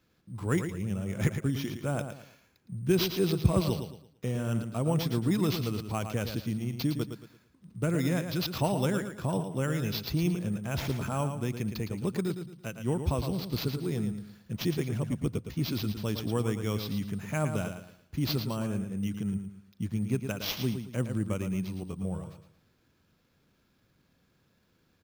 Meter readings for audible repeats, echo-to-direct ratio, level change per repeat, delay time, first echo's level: 3, −7.5 dB, −10.0 dB, 112 ms, −8.0 dB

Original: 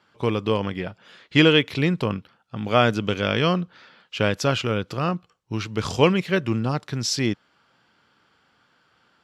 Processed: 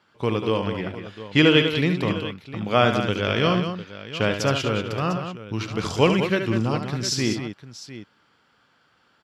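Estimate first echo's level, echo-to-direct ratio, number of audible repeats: −7.5 dB, −4.5 dB, 3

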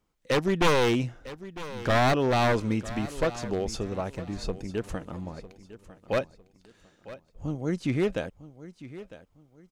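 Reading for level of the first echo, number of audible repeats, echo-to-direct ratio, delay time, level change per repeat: −16.0 dB, 2, −15.5 dB, 953 ms, −10.0 dB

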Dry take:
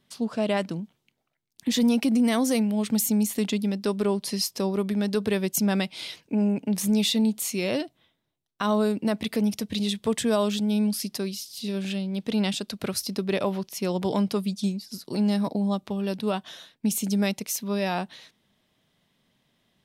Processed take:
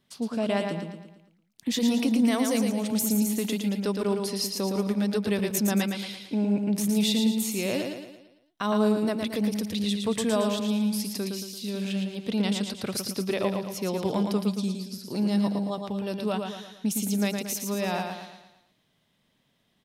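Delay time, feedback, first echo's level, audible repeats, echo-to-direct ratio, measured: 113 ms, 46%, −5.0 dB, 5, −4.0 dB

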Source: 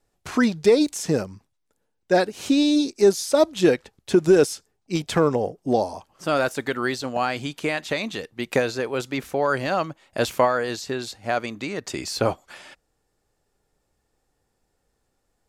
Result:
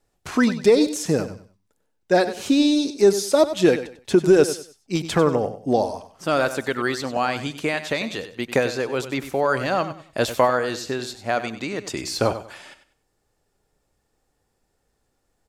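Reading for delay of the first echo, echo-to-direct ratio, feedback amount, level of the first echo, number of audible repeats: 96 ms, −11.5 dB, 26%, −12.0 dB, 2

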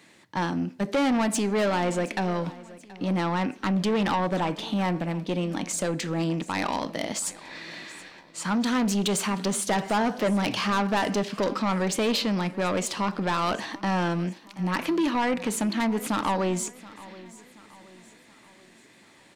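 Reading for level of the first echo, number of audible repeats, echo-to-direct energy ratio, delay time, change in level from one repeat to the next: −19.5 dB, 3, −18.5 dB, 727 ms, −7.0 dB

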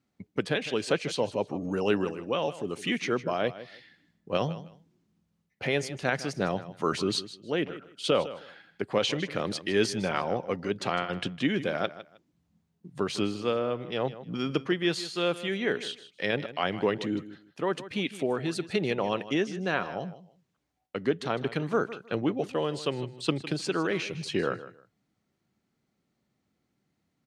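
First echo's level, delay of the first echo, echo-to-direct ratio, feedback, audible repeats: −15.0 dB, 156 ms, −15.0 dB, 21%, 2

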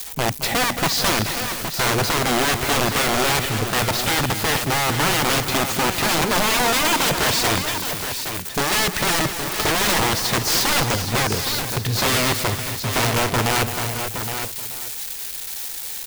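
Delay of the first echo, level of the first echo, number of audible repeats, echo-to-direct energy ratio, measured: 220 ms, −10.5 dB, 5, −5.0 dB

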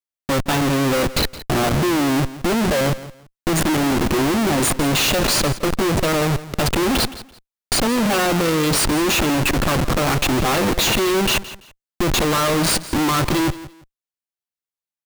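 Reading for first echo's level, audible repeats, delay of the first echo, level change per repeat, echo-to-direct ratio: −16.0 dB, 2, 168 ms, −12.5 dB, −16.0 dB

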